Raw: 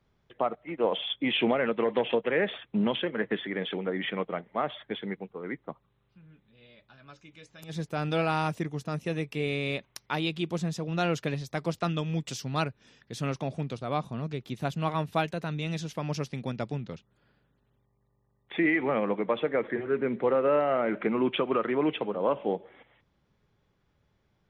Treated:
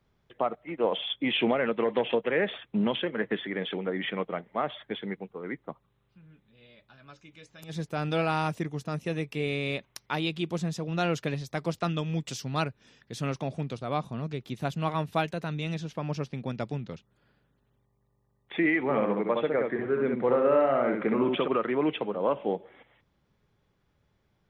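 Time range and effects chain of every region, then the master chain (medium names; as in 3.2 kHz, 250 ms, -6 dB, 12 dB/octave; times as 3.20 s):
15.74–16.50 s: low-pass 2.9 kHz 6 dB/octave + band-stop 2 kHz, Q 23
18.83–21.48 s: peaking EQ 2.8 kHz -4 dB 0.94 oct + multi-tap echo 65/685 ms -4/-19.5 dB
whole clip: none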